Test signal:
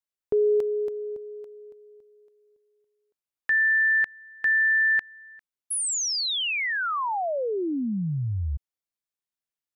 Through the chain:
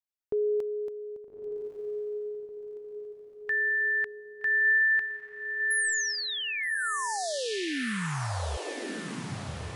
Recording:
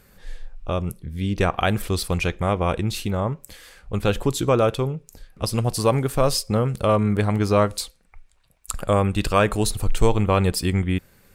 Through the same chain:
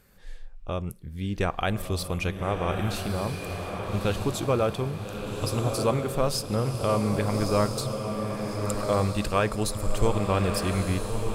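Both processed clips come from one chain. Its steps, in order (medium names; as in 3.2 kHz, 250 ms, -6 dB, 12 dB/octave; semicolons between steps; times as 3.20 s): echo that smears into a reverb 1247 ms, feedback 48%, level -4.5 dB; trim -6 dB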